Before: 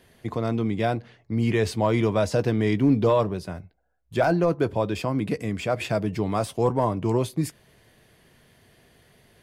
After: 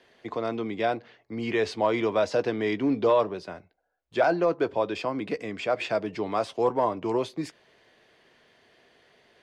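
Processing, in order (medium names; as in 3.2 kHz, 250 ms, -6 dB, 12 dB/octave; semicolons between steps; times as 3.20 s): three-band isolator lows -17 dB, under 280 Hz, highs -24 dB, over 6.3 kHz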